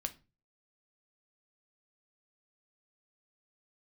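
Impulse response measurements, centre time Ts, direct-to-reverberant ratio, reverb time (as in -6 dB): 5 ms, 7.0 dB, 0.30 s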